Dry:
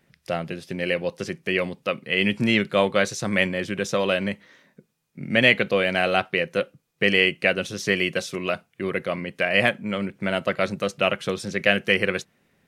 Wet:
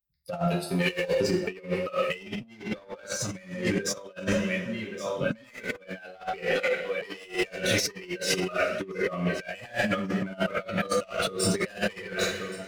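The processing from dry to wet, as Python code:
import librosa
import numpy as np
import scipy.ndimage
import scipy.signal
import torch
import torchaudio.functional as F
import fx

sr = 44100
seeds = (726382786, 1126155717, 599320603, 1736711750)

y = fx.bin_expand(x, sr, power=2.0)
y = fx.leveller(y, sr, passes=1)
y = fx.tilt_eq(y, sr, slope=3.0, at=(0.47, 1.08))
y = fx.echo_feedback(y, sr, ms=1125, feedback_pct=46, wet_db=-23)
y = 10.0 ** (-19.0 / 20.0) * np.tanh(y / 10.0 ** (-19.0 / 20.0))
y = fx.highpass(y, sr, hz=fx.line((6.43, 910.0), (7.24, 270.0)), slope=6, at=(6.43, 7.24), fade=0.02)
y = fx.rev_double_slope(y, sr, seeds[0], early_s=0.42, late_s=1.6, knee_db=-18, drr_db=-3.5)
y = fx.over_compress(y, sr, threshold_db=-33.0, ratio=-0.5)
y = y * librosa.db_to_amplitude(3.0)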